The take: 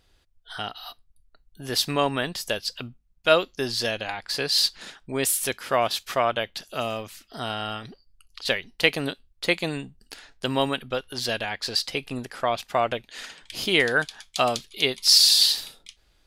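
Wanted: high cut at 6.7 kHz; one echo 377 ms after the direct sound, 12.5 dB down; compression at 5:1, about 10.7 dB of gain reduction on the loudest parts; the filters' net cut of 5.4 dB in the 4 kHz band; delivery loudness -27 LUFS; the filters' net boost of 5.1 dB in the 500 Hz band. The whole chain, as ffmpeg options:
-af "lowpass=6700,equalizer=f=500:t=o:g=6.5,equalizer=f=4000:t=o:g=-6,acompressor=threshold=0.0794:ratio=5,aecho=1:1:377:0.237,volume=1.26"

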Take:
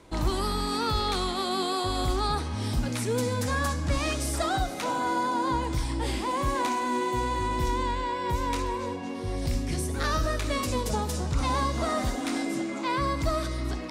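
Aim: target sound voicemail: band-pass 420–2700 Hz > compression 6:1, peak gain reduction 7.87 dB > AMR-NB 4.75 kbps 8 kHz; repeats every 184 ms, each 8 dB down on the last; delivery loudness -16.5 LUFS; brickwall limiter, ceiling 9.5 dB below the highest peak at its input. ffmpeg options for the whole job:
-af "alimiter=limit=0.0708:level=0:latency=1,highpass=420,lowpass=2700,aecho=1:1:184|368|552|736|920:0.398|0.159|0.0637|0.0255|0.0102,acompressor=threshold=0.0178:ratio=6,volume=17.8" -ar 8000 -c:a libopencore_amrnb -b:a 4750

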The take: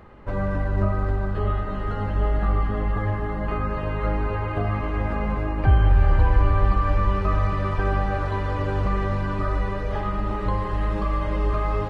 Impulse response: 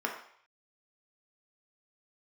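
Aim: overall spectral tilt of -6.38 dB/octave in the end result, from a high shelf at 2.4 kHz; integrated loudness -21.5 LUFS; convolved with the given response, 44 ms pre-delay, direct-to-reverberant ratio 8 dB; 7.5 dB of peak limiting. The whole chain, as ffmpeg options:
-filter_complex "[0:a]highshelf=f=2400:g=5.5,alimiter=limit=0.2:level=0:latency=1,asplit=2[s0][s1];[1:a]atrim=start_sample=2205,adelay=44[s2];[s1][s2]afir=irnorm=-1:irlink=0,volume=0.178[s3];[s0][s3]amix=inputs=2:normalize=0,volume=1.58"

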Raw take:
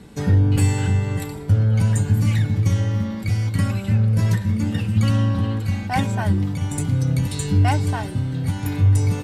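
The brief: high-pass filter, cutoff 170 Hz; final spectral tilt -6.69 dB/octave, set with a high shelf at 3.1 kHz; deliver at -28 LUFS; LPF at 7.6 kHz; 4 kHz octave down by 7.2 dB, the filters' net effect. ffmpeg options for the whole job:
-af "highpass=170,lowpass=7600,highshelf=f=3100:g=-8.5,equalizer=f=4000:t=o:g=-3,volume=0.841"

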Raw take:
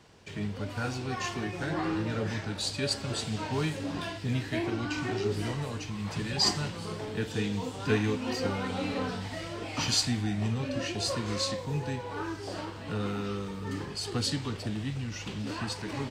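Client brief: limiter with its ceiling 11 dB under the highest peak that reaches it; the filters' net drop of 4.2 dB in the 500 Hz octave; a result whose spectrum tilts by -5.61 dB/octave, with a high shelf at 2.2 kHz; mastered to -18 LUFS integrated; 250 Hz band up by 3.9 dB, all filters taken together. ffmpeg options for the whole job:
-af "equalizer=f=250:t=o:g=7,equalizer=f=500:t=o:g=-8,highshelf=f=2200:g=-6,volume=6.31,alimiter=limit=0.376:level=0:latency=1"

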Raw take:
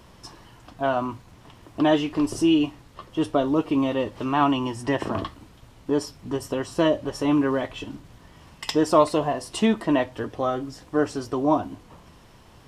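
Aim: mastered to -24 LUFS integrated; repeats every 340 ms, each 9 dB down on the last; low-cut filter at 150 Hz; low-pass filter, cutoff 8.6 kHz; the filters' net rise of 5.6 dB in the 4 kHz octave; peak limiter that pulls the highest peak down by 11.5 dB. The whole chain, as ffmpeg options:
-af "highpass=150,lowpass=8600,equalizer=f=4000:t=o:g=8.5,alimiter=limit=0.168:level=0:latency=1,aecho=1:1:340|680|1020|1360:0.355|0.124|0.0435|0.0152,volume=1.41"

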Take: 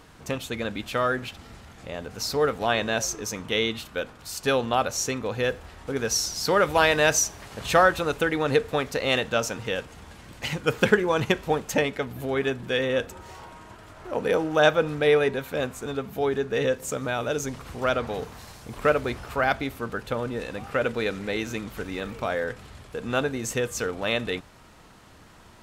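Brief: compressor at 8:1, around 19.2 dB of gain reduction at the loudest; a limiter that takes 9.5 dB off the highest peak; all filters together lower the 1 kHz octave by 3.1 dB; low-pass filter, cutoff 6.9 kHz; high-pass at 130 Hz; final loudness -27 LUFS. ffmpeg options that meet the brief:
-af "highpass=130,lowpass=6900,equalizer=f=1000:t=o:g=-4.5,acompressor=threshold=0.02:ratio=8,volume=4.73,alimiter=limit=0.168:level=0:latency=1"

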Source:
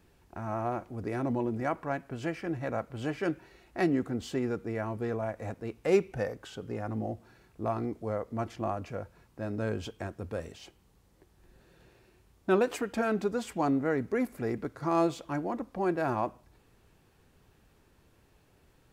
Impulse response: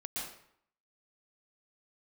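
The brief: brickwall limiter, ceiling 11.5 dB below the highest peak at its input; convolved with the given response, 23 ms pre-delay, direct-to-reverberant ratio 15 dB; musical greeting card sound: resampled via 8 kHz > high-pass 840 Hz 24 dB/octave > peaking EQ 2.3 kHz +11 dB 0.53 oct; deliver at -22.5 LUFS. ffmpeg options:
-filter_complex "[0:a]alimiter=level_in=1.06:limit=0.0631:level=0:latency=1,volume=0.944,asplit=2[s0][s1];[1:a]atrim=start_sample=2205,adelay=23[s2];[s1][s2]afir=irnorm=-1:irlink=0,volume=0.15[s3];[s0][s3]amix=inputs=2:normalize=0,aresample=8000,aresample=44100,highpass=f=840:w=0.5412,highpass=f=840:w=1.3066,equalizer=f=2300:t=o:w=0.53:g=11,volume=9.44"

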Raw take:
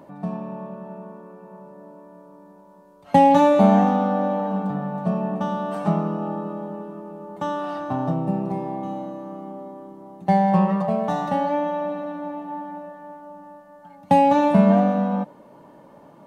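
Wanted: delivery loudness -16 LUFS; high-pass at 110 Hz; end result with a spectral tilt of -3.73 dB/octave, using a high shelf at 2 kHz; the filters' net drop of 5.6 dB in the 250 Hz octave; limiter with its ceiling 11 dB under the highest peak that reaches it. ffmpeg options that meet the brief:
-af "highpass=110,equalizer=f=250:t=o:g=-7.5,highshelf=f=2000:g=5,volume=3.76,alimiter=limit=0.596:level=0:latency=1"

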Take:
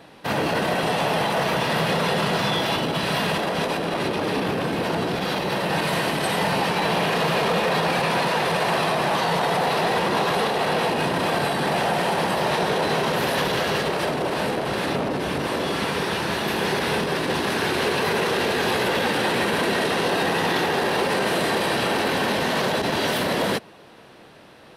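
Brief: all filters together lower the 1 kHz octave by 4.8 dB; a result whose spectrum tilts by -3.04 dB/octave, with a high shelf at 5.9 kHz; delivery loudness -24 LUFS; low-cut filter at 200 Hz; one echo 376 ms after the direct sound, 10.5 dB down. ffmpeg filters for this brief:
-af "highpass=200,equalizer=f=1000:t=o:g=-6.5,highshelf=f=5900:g=4.5,aecho=1:1:376:0.299,volume=0.944"

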